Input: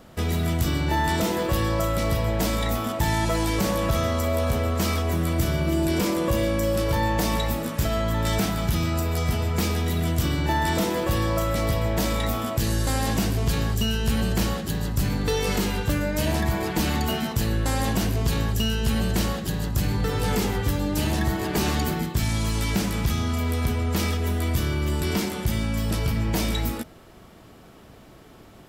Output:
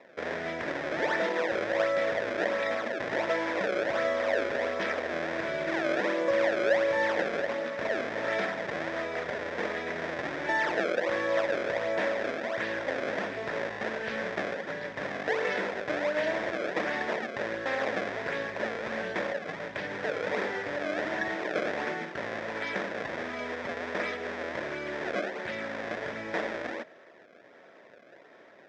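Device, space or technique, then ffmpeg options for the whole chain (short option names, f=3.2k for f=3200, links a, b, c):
circuit-bent sampling toy: -af "acrusher=samples=27:mix=1:aa=0.000001:lfo=1:lforange=43.2:lforate=1.4,highpass=520,equalizer=f=570:t=q:w=4:g=6,equalizer=f=830:t=q:w=4:g=-6,equalizer=f=1.2k:t=q:w=4:g=-7,equalizer=f=1.8k:t=q:w=4:g=7,equalizer=f=2.9k:t=q:w=4:g=-9,equalizer=f=4.3k:t=q:w=4:g=-10,lowpass=f=4.4k:w=0.5412,lowpass=f=4.4k:w=1.3066"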